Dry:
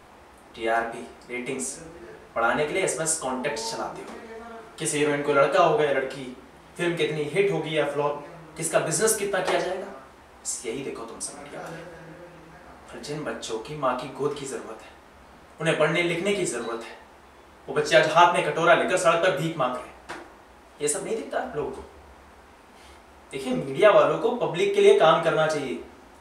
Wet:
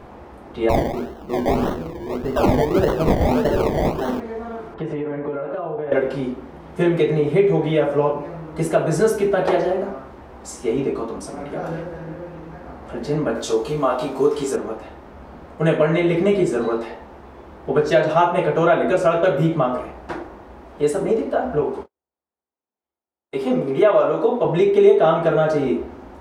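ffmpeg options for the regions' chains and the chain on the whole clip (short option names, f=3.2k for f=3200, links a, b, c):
-filter_complex "[0:a]asettb=1/sr,asplit=3[a][b][c];[a]atrim=end=0.694[d];[b]atrim=start=0.69:end=4.2,asetpts=PTS-STARTPTS,afade=t=in:d=0.004:c=qsin,afade=t=out:st=3.506:d=0.004:c=qsin,aecho=1:1:767:0.531,atrim=end_sample=154791,acrusher=samples=26:mix=1:aa=0.000001:lfo=1:lforange=15.6:lforate=1.7[e];[c]atrim=start=4.196[f];[d][e]acrossfade=d=0.004:c1=hsin:c2=qsin[g];[g][f]acrossfade=d=0.004:c1=qsin:c2=hsin,asettb=1/sr,asplit=3[h][i][j];[h]atrim=end=4.744[k];[i]atrim=start=4.74:end=5.92,asetpts=PTS-STARTPTS,afade=t=in:d=0.004:c=qsin,afade=t=out:st=1.176:d=0.004:c=qsin,lowpass=2k,acompressor=threshold=-33dB:ratio=10:attack=3.2:release=140:knee=1:detection=peak,aeval=exprs='val(0)+0.00112*sin(2*PI*1000*n/s)':c=same[l];[j]atrim=start=5.916[m];[k][l]acrossfade=d=0.004:c1=hsin:c2=qsin[n];[n][m]acrossfade=d=0.004:c1=qsin:c2=hsin,asettb=1/sr,asplit=3[o][p][q];[o]atrim=end=13.354[r];[p]atrim=start=13.35:end=14.56,asetpts=PTS-STARTPTS,afade=t=in:d=0.004:c=qsin,afade=t=out:st=1.206:d=0.004:c=qsin,bass=f=250:g=-4,treble=f=4k:g=11,asplit=2[s][t];[t]adelay=18,volume=-4.5dB[u];[s][u]amix=inputs=2:normalize=0,atrim=end_sample=53361[v];[q]atrim=start=14.556[w];[r][v]acrossfade=d=0.004:c1=hsin:c2=qsin[x];[x][w]acrossfade=d=0.004:c1=qsin:c2=hsin,asettb=1/sr,asplit=3[y][z][aa];[y]atrim=end=21.614[ab];[z]atrim=start=21.61:end=24.45,asetpts=PTS-STARTPTS,afade=t=in:d=0.004:c=qsin,afade=t=out:st=2.836:d=0.004:c=qsin,highpass=f=310:p=1,agate=range=-50dB:threshold=-44dB:ratio=16:release=100:detection=peak[ac];[aa]atrim=start=24.446[ad];[ab][ac]acrossfade=d=0.004:c1=hsin:c2=qsin[ae];[ae][ad]acrossfade=d=0.004:c1=qsin:c2=hsin,equalizer=f=9k:w=1.6:g=-7,acompressor=threshold=-26dB:ratio=2,tiltshelf=f=1.2k:g=7.5,volume=5.5dB"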